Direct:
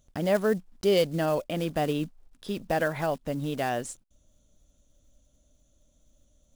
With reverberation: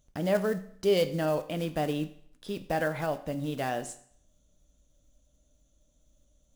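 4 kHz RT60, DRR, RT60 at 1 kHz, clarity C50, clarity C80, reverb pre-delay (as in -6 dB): 0.60 s, 9.0 dB, 0.60 s, 14.0 dB, 17.0 dB, 6 ms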